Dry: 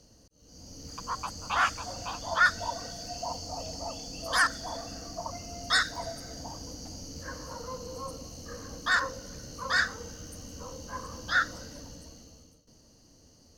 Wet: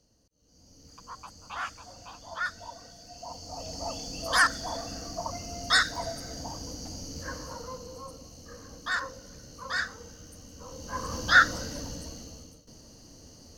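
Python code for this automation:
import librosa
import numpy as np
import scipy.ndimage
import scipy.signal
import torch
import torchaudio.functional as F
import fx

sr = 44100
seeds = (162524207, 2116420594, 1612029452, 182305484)

y = fx.gain(x, sr, db=fx.line((3.07, -9.5), (3.89, 2.5), (7.31, 2.5), (8.07, -4.5), (10.57, -4.5), (11.14, 7.5)))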